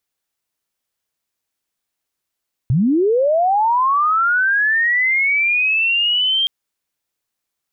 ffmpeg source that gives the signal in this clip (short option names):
-f lavfi -i "aevalsrc='pow(10,(-12-2*t/3.77)/20)*sin(2*PI*(110*t+3090*t*t/(2*3.77)))':d=3.77:s=44100"